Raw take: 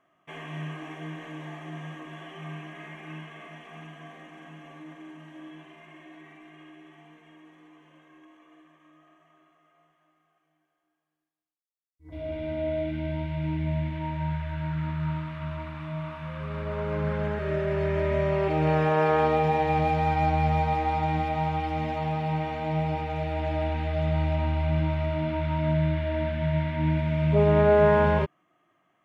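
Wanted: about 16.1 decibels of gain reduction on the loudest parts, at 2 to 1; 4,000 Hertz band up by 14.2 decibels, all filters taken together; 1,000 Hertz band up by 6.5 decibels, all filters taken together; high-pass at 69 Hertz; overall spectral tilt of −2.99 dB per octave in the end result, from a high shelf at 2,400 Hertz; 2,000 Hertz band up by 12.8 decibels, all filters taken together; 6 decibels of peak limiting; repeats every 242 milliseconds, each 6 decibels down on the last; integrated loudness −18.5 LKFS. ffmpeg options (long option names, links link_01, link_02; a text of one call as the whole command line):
ffmpeg -i in.wav -af "highpass=69,equalizer=frequency=1000:width_type=o:gain=5.5,equalizer=frequency=2000:width_type=o:gain=8.5,highshelf=frequency=2400:gain=7,equalizer=frequency=4000:width_type=o:gain=9,acompressor=threshold=-43dB:ratio=2,alimiter=level_in=3dB:limit=-24dB:level=0:latency=1,volume=-3dB,aecho=1:1:242|484|726|968|1210|1452:0.501|0.251|0.125|0.0626|0.0313|0.0157,volume=18.5dB" out.wav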